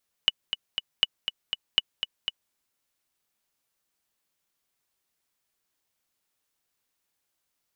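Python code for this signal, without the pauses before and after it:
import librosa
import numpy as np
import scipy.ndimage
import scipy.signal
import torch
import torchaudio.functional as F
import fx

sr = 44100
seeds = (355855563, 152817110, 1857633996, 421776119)

y = fx.click_track(sr, bpm=240, beats=3, bars=3, hz=2950.0, accent_db=8.5, level_db=-6.0)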